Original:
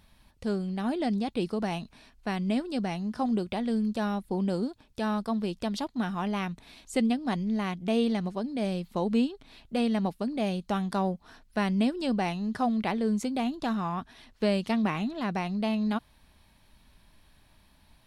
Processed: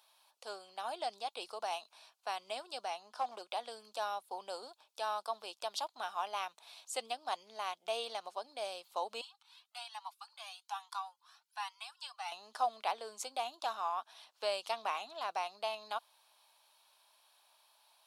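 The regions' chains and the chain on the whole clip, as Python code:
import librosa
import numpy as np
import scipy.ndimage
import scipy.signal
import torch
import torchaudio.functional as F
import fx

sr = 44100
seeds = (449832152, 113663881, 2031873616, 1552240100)

y = fx.chain(x, sr, fx.high_shelf(hz=6100.0, db=-5.5),
    fx.clip_hard(threshold_db=-23.5), at=(2.9, 3.51))
y = fx.chain(y, sr, fx.steep_highpass(hz=830.0, slope=48),
    fx.comb_cascade(direction='rising', hz=1.2), at=(9.21, 12.32))
y = scipy.signal.sosfilt(scipy.signal.butter(4, 690.0, 'highpass', fs=sr, output='sos'), y)
y = fx.peak_eq(y, sr, hz=1900.0, db=-12.5, octaves=0.62)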